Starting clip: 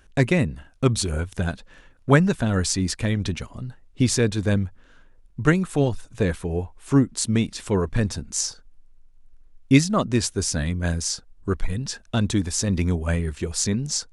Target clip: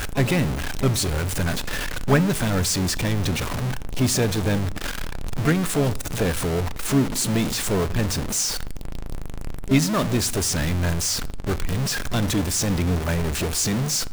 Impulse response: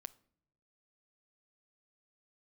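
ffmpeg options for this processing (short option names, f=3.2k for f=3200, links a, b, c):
-filter_complex "[0:a]aeval=exprs='val(0)+0.5*0.158*sgn(val(0))':c=same[a];[1:a]atrim=start_sample=2205,afade=t=out:st=0.33:d=0.01,atrim=end_sample=14994[b];[a][b]afir=irnorm=-1:irlink=0,asplit=2[c][d];[d]asetrate=66075,aresample=44100,atempo=0.66742,volume=-12dB[e];[c][e]amix=inputs=2:normalize=0"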